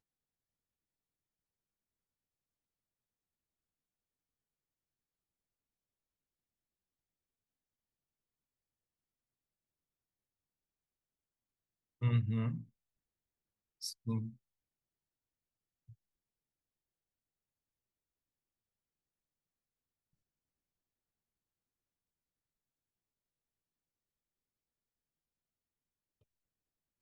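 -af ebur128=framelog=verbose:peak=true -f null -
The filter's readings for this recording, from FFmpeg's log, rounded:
Integrated loudness:
  I:         -37.2 LUFS
  Threshold: -48.7 LUFS
Loudness range:
  LRA:         7.5 LU
  Threshold: -62.0 LUFS
  LRA low:   -47.2 LUFS
  LRA high:  -39.6 LUFS
True peak:
  Peak:      -21.9 dBFS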